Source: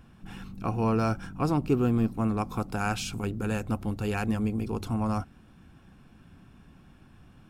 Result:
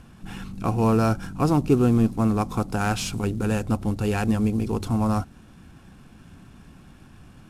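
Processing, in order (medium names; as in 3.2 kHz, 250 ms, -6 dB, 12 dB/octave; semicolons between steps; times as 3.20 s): CVSD coder 64 kbps; dynamic bell 2.1 kHz, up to -3 dB, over -46 dBFS, Q 0.74; trim +6 dB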